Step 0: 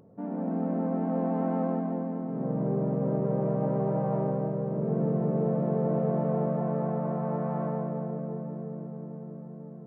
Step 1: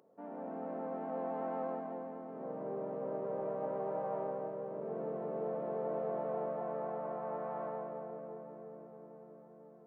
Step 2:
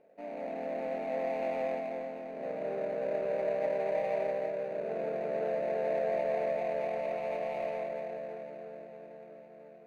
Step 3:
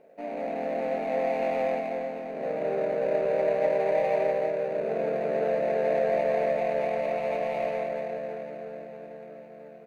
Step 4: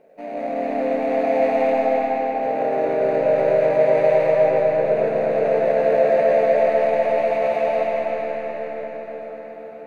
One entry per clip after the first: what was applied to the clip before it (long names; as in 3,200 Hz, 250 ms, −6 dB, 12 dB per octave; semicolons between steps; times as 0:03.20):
high-pass filter 470 Hz 12 dB per octave; level −4.5 dB
running median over 41 samples; graphic EQ with 15 bands 100 Hz −6 dB, 630 Hz +12 dB, 2,500 Hz +10 dB
double-tracking delay 13 ms −11 dB; level +6.5 dB
bucket-brigade delay 160 ms, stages 2,048, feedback 61%, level −7.5 dB; convolution reverb RT60 4.9 s, pre-delay 65 ms, DRR −3 dB; level +2.5 dB